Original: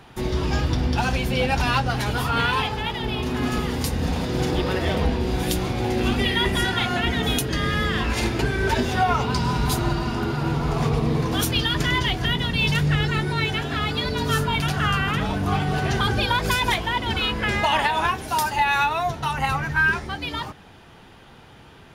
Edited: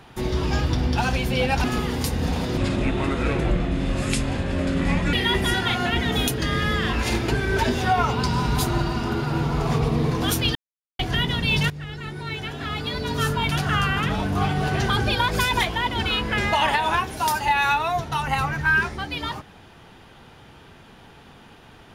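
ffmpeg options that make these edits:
ffmpeg -i in.wav -filter_complex "[0:a]asplit=7[link_01][link_02][link_03][link_04][link_05][link_06][link_07];[link_01]atrim=end=1.642[link_08];[link_02]atrim=start=3.438:end=4.374[link_09];[link_03]atrim=start=4.37:end=6.24,asetpts=PTS-STARTPTS,asetrate=32193,aresample=44100,atrim=end_sample=112968,asetpts=PTS-STARTPTS[link_10];[link_04]atrim=start=6.236:end=11.66,asetpts=PTS-STARTPTS,afade=type=out:start_time=5.42:duration=0.004:curve=hsin[link_11];[link_05]atrim=start=11.66:end=12.1,asetpts=PTS-STARTPTS,volume=0[link_12];[link_06]atrim=start=12.1:end=12.81,asetpts=PTS-STARTPTS,afade=type=in:duration=0.004:curve=hsin,afade=type=out:start_time=0.706:duration=0.004:curve=hsin:silence=0.141254[link_13];[link_07]atrim=start=12.81,asetpts=PTS-STARTPTS,afade=type=in:duration=1.84:silence=0.141254[link_14];[link_08][link_09]acrossfade=duration=0.004:curve1=hsin:curve2=hsin[link_15];[link_15][link_10]acrossfade=duration=0.004:curve1=hsin:curve2=hsin[link_16];[link_11][link_12][link_13][link_14]concat=n=4:v=0:a=1[link_17];[link_16][link_17]acrossfade=duration=0.004:curve1=hsin:curve2=hsin" out.wav

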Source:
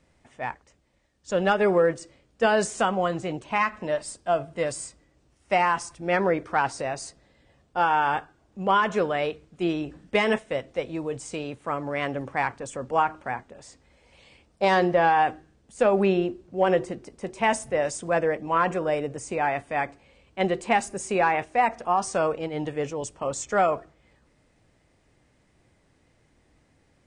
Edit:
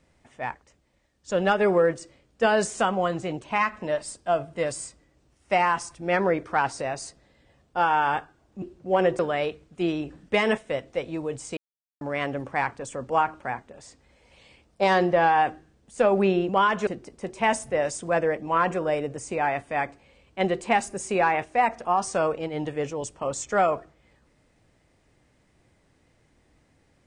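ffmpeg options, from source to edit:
ffmpeg -i in.wav -filter_complex "[0:a]asplit=7[link_01][link_02][link_03][link_04][link_05][link_06][link_07];[link_01]atrim=end=8.622[link_08];[link_02]atrim=start=16.298:end=16.872[link_09];[link_03]atrim=start=8.998:end=11.38,asetpts=PTS-STARTPTS,afade=type=out:start_time=2.378:duration=0.004:curve=hsin[link_10];[link_04]atrim=start=11.38:end=11.82,asetpts=PTS-STARTPTS,volume=0[link_11];[link_05]atrim=start=11.82:end=16.302,asetpts=PTS-STARTPTS,afade=type=in:duration=0.004:curve=hsin[link_12];[link_06]atrim=start=8.618:end=9.002[link_13];[link_07]atrim=start=16.868[link_14];[link_08][link_09]acrossfade=duration=0.004:curve1=hsin:curve2=hsin[link_15];[link_10][link_11][link_12]concat=n=3:v=0:a=1[link_16];[link_15][link_16]acrossfade=duration=0.004:curve1=hsin:curve2=hsin[link_17];[link_17][link_13]acrossfade=duration=0.004:curve1=hsin:curve2=hsin[link_18];[link_18][link_14]acrossfade=duration=0.004:curve1=hsin:curve2=hsin" out.wav

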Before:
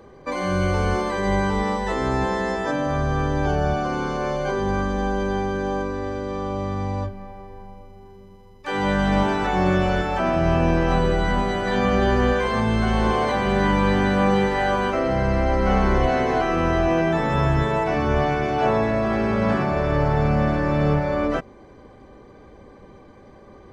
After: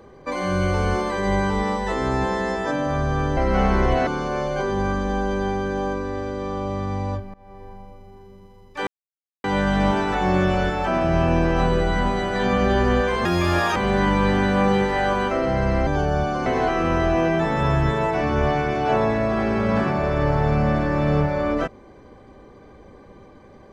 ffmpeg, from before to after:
ffmpeg -i in.wav -filter_complex "[0:a]asplit=9[link_01][link_02][link_03][link_04][link_05][link_06][link_07][link_08][link_09];[link_01]atrim=end=3.372[link_10];[link_02]atrim=start=15.488:end=16.192[link_11];[link_03]atrim=start=3.958:end=7.23,asetpts=PTS-STARTPTS,afade=type=out:start_time=3.268:duration=0.004:curve=hsin:silence=0.0707946[link_12];[link_04]atrim=start=7.23:end=8.76,asetpts=PTS-STARTPTS,afade=type=in:duration=0.28:silence=0.0707946,afade=type=out:start_time=1.526:duration=0.004:curve=hsin,apad=pad_dur=0.57[link_13];[link_05]atrim=start=8.76:end=12.574,asetpts=PTS-STARTPTS,afade=type=in:duration=0.004:curve=hsin[link_14];[link_06]atrim=start=12.57:end=13.38,asetpts=PTS-STARTPTS,asetrate=70119,aresample=44100,atrim=end_sample=22466,asetpts=PTS-STARTPTS[link_15];[link_07]atrim=start=13.376:end=15.492[link_16];[link_08]atrim=start=3.368:end=3.962[link_17];[link_09]atrim=start=16.188[link_18];[link_10][link_11]acrossfade=duration=0.004:curve1=hsin:curve2=hsin[link_19];[link_12][link_13][link_14]concat=n=3:v=0:a=1[link_20];[link_19][link_20]acrossfade=duration=0.004:curve1=hsin:curve2=hsin[link_21];[link_21][link_15]acrossfade=duration=0.004:curve1=hsin:curve2=hsin[link_22];[link_22][link_16]acrossfade=duration=0.004:curve1=hsin:curve2=hsin[link_23];[link_23][link_17]acrossfade=duration=0.004:curve1=hsin:curve2=hsin[link_24];[link_24][link_18]acrossfade=duration=0.004:curve1=hsin:curve2=hsin" out.wav

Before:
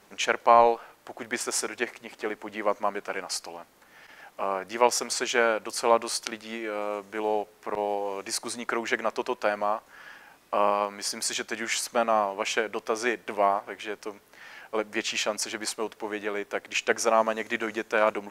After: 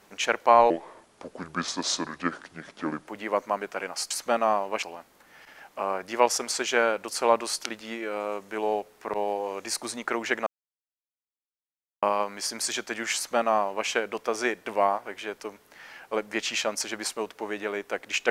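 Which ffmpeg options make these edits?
ffmpeg -i in.wav -filter_complex "[0:a]asplit=7[link_01][link_02][link_03][link_04][link_05][link_06][link_07];[link_01]atrim=end=0.704[link_08];[link_02]atrim=start=0.7:end=2.41,asetpts=PTS-STARTPTS,asetrate=31752,aresample=44100[link_09];[link_03]atrim=start=2.406:end=3.442[link_10];[link_04]atrim=start=11.768:end=12.492[link_11];[link_05]atrim=start=3.438:end=9.08,asetpts=PTS-STARTPTS,afade=type=out:start_time=5.638:duration=0.004:curve=hsin[link_12];[link_06]atrim=start=9.08:end=10.64,asetpts=PTS-STARTPTS,volume=0[link_13];[link_07]atrim=start=10.64,asetpts=PTS-STARTPTS,afade=type=in:duration=0.004:curve=hsin[link_14];[link_08][link_09]acrossfade=duration=0.004:curve1=hsin:curve2=hsin[link_15];[link_15][link_10]acrossfade=duration=0.004:curve1=hsin:curve2=hsin[link_16];[link_16][link_11]acrossfade=duration=0.004:curve1=hsin:curve2=hsin[link_17];[link_12][link_13][link_14]concat=n=3:v=0:a=1[link_18];[link_17][link_18]acrossfade=duration=0.004:curve1=hsin:curve2=hsin" out.wav

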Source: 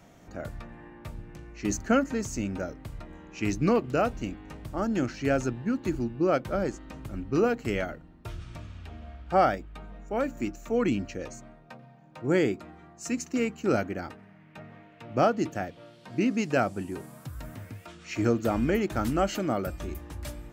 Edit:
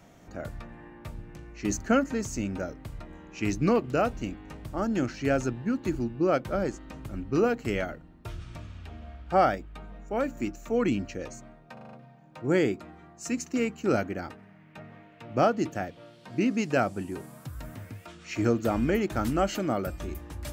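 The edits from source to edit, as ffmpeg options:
ffmpeg -i in.wav -filter_complex "[0:a]asplit=6[link_01][link_02][link_03][link_04][link_05][link_06];[link_01]atrim=end=11.772[link_07];[link_02]atrim=start=11.728:end=11.772[link_08];[link_03]atrim=start=11.728:end=11.772[link_09];[link_04]atrim=start=11.728:end=11.772[link_10];[link_05]atrim=start=11.728:end=11.772[link_11];[link_06]atrim=start=11.728[link_12];[link_07][link_08]acrossfade=duration=0.004:curve1=hsin:curve2=hsin[link_13];[link_13][link_09]acrossfade=duration=0.004:curve1=hsin:curve2=hsin[link_14];[link_14][link_10]acrossfade=duration=0.004:curve1=hsin:curve2=hsin[link_15];[link_15][link_11]acrossfade=duration=0.004:curve1=hsin:curve2=hsin[link_16];[link_16][link_12]acrossfade=duration=0.004:curve1=hsin:curve2=hsin" out.wav

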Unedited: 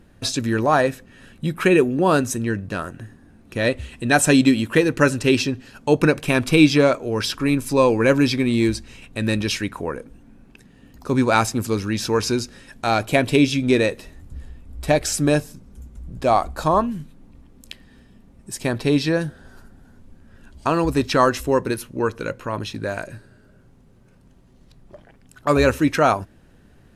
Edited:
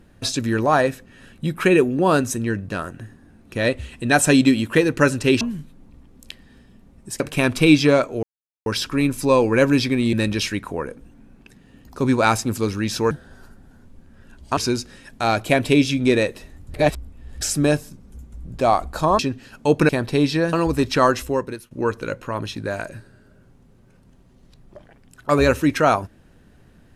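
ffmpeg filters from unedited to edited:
ffmpeg -i in.wav -filter_complex "[0:a]asplit=13[link_01][link_02][link_03][link_04][link_05][link_06][link_07][link_08][link_09][link_10][link_11][link_12][link_13];[link_01]atrim=end=5.412[link_14];[link_02]atrim=start=16.818:end=18.612[link_15];[link_03]atrim=start=6.108:end=7.14,asetpts=PTS-STARTPTS,afade=type=out:start_time=1.028:duration=0.004:curve=hsin,apad=pad_dur=0.43[link_16];[link_04]atrim=start=7.14:end=8.612,asetpts=PTS-STARTPTS,afade=type=in:duration=0.004:curve=hsin[link_17];[link_05]atrim=start=9.218:end=12.202[link_18];[link_06]atrim=start=19.248:end=20.712[link_19];[link_07]atrim=start=12.198:end=14.372[link_20];[link_08]atrim=start=14.368:end=15.042,asetpts=PTS-STARTPTS,areverse[link_21];[link_09]atrim=start=15.038:end=16.822[link_22];[link_10]atrim=start=5.408:end=6.112[link_23];[link_11]atrim=start=18.608:end=19.252[link_24];[link_12]atrim=start=20.708:end=21.89,asetpts=PTS-STARTPTS,afade=type=out:start_time=0.632:duration=0.55:silence=0.11885[link_25];[link_13]atrim=start=21.89,asetpts=PTS-STARTPTS,afade=type=in:duration=0.004:curve=hsin:silence=0.11885[link_26];[link_14][link_15]acrossfade=duration=0.004:curve1=hsin:curve2=hsin[link_27];[link_16][link_17]concat=n=2:v=0:a=1[link_28];[link_27][link_28]acrossfade=duration=0.004:curve1=hsin:curve2=hsin[link_29];[link_29][link_18]acrossfade=duration=0.004:curve1=hsin:curve2=hsin[link_30];[link_30][link_19]acrossfade=duration=0.004:curve1=hsin:curve2=hsin[link_31];[link_31][link_20]acrossfade=duration=0.004:curve1=hsin:curve2=hsin[link_32];[link_32][link_21]acrossfade=duration=0.004:curve1=hsin:curve2=hsin[link_33];[link_33][link_22]acrossfade=duration=0.004:curve1=hsin:curve2=hsin[link_34];[link_34][link_23]acrossfade=duration=0.004:curve1=hsin:curve2=hsin[link_35];[link_35][link_24]acrossfade=duration=0.004:curve1=hsin:curve2=hsin[link_36];[link_25][link_26]concat=n=2:v=0:a=1[link_37];[link_36][link_37]acrossfade=duration=0.004:curve1=hsin:curve2=hsin" out.wav

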